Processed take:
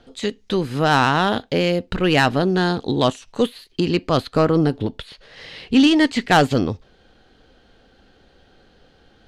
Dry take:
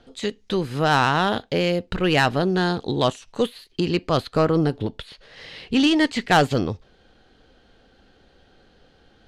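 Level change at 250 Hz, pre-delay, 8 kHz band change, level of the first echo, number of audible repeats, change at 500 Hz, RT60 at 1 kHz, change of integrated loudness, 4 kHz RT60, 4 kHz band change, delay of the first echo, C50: +4.0 dB, no reverb audible, +2.0 dB, no echo audible, no echo audible, +2.0 dB, no reverb audible, +2.5 dB, no reverb audible, +2.0 dB, no echo audible, no reverb audible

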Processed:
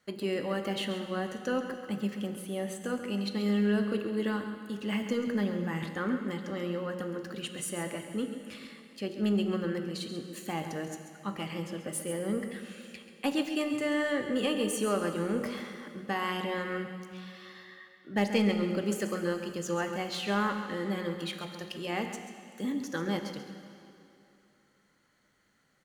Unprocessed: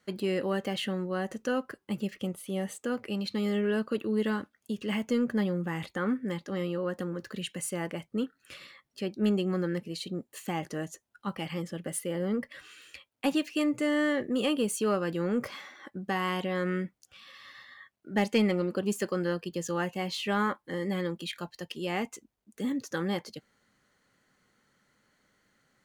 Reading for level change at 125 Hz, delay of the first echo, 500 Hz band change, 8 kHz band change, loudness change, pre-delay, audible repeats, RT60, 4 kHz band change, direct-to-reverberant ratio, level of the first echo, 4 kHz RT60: −1.5 dB, 136 ms, −1.5 dB, −0.5 dB, −1.0 dB, 5 ms, 1, 2.8 s, −0.5 dB, 5.5 dB, −10.5 dB, 2.5 s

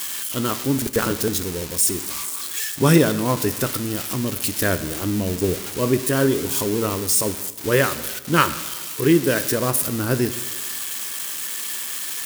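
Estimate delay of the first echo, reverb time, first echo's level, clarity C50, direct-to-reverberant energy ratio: no echo audible, 1.2 s, no echo audible, 14.0 dB, 11.5 dB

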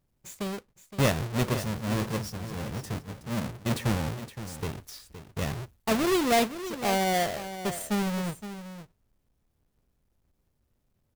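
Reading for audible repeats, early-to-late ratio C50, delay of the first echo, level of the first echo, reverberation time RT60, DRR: 1, no reverb audible, 517 ms, −12.0 dB, no reverb audible, no reverb audible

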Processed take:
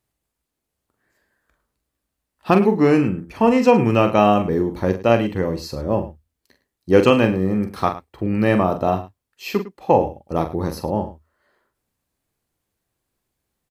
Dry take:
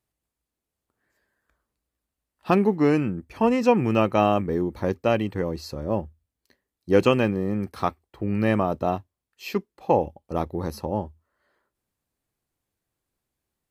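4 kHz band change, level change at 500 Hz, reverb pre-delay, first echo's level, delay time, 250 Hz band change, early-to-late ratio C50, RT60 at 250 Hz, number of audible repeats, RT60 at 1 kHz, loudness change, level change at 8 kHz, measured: +5.0 dB, +5.5 dB, no reverb audible, −8.0 dB, 43 ms, +5.0 dB, no reverb audible, no reverb audible, 2, no reverb audible, +5.0 dB, can't be measured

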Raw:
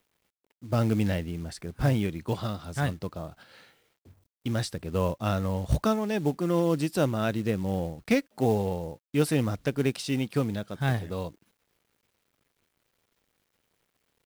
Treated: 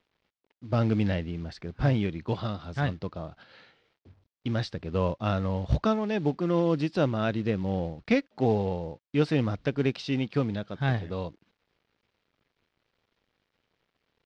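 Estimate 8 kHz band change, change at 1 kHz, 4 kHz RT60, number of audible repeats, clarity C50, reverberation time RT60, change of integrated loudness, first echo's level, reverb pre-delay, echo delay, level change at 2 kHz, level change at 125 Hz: below −10 dB, 0.0 dB, no reverb audible, no echo audible, no reverb audible, no reverb audible, 0.0 dB, no echo audible, no reverb audible, no echo audible, 0.0 dB, 0.0 dB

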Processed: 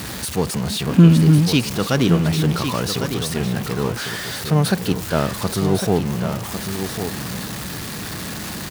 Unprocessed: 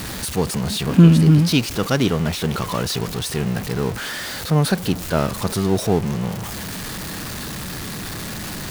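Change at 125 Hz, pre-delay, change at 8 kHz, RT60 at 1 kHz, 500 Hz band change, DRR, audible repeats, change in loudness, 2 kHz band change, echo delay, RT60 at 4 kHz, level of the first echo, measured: +0.5 dB, no reverb audible, +0.5 dB, no reverb audible, +0.5 dB, no reverb audible, 1, +0.5 dB, +0.5 dB, 1,102 ms, no reverb audible, −8.0 dB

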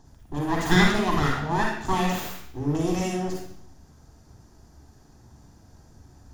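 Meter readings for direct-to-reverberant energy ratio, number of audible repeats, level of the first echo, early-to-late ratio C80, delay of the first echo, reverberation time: −0.5 dB, no echo audible, no echo audible, 5.5 dB, no echo audible, 0.70 s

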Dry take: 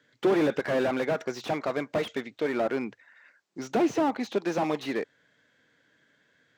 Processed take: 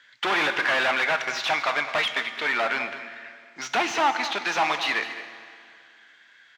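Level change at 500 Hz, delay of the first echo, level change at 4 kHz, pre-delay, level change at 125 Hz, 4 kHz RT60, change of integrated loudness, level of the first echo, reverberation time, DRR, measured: −4.0 dB, 212 ms, +14.0 dB, 9 ms, −9.0 dB, 2.2 s, +4.5 dB, −13.0 dB, 2.3 s, 8.0 dB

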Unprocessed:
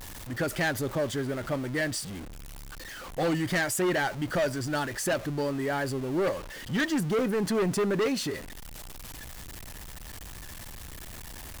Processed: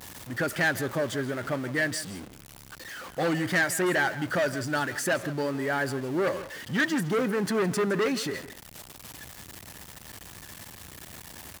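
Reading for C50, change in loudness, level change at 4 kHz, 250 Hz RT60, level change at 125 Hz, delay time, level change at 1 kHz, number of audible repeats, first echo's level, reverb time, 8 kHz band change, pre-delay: no reverb audible, +1.0 dB, +0.5 dB, no reverb audible, −1.0 dB, 163 ms, +1.5 dB, 1, −15.5 dB, no reverb audible, 0.0 dB, no reverb audible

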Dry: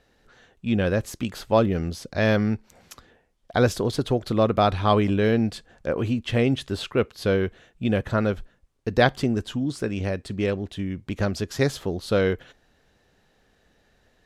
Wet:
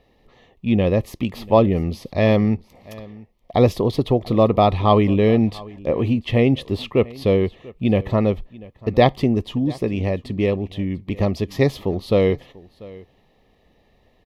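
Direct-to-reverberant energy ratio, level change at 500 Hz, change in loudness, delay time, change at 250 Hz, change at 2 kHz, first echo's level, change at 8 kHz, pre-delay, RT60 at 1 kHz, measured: no reverb audible, +5.0 dB, +4.5 dB, 691 ms, +5.0 dB, −2.0 dB, −21.5 dB, can't be measured, no reverb audible, no reverb audible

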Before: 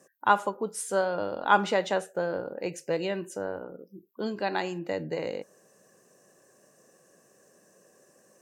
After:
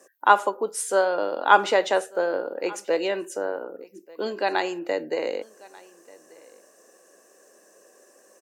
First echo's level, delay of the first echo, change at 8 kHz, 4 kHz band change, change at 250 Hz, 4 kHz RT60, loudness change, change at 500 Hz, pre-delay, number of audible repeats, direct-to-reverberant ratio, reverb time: −23.5 dB, 1,188 ms, +5.5 dB, +5.5 dB, +0.5 dB, no reverb audible, +5.0 dB, +5.5 dB, no reverb audible, 1, no reverb audible, no reverb audible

